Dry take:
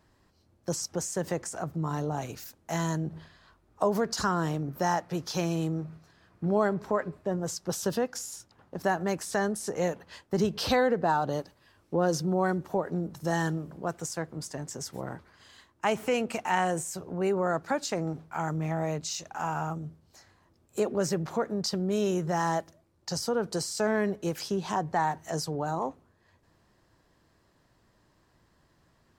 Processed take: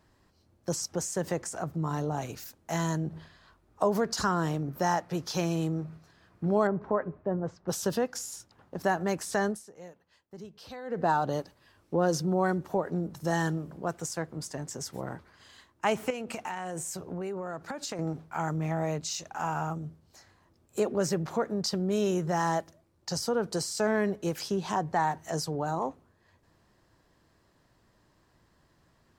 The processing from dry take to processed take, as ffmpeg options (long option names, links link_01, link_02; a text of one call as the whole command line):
ffmpeg -i in.wav -filter_complex "[0:a]asettb=1/sr,asplit=3[link_01][link_02][link_03];[link_01]atrim=end=6.674[link_04];[link_02]atrim=start=6.67:end=7.68,asetpts=PTS-STARTPTS,afade=type=in:duration=0.004:curve=qsin,afade=type=out:start_time=1.006:duration=0.004:curve=qsin,lowpass=1500[link_05];[link_03]atrim=start=7.676[link_06];[link_04][link_05]acrossfade=duration=0.004:curve1=hsin:curve2=qsin[link_07];[link_07][link_06]acrossfade=duration=0.004:curve1=qsin:curve2=hsin,asettb=1/sr,asplit=3[link_08][link_09][link_10];[link_08]atrim=end=16.104[link_11];[link_09]atrim=start=16.1:end=17.99,asetpts=PTS-STARTPTS,afade=type=in:duration=0.004:curve=qsin,afade=type=out:start_time=1.886:duration=0.004:curve=qsin,acompressor=threshold=-31dB:ratio=12:attack=3.2:release=140:knee=1:detection=peak[link_12];[link_10]atrim=start=17.986[link_13];[link_11][link_12]acrossfade=duration=0.004:curve1=hsin:curve2=qsin[link_14];[link_14][link_13]acrossfade=duration=0.004:curve1=qsin:curve2=hsin,asplit=3[link_15][link_16][link_17];[link_15]atrim=end=9.69,asetpts=PTS-STARTPTS,afade=type=out:start_time=9.5:duration=0.19:curve=qua:silence=0.11885[link_18];[link_16]atrim=start=9.69:end=10.81,asetpts=PTS-STARTPTS,volume=-18.5dB[link_19];[link_17]atrim=start=10.81,asetpts=PTS-STARTPTS,afade=type=in:duration=0.19:curve=qua:silence=0.11885[link_20];[link_18][link_19][link_20]concat=n=3:v=0:a=1" out.wav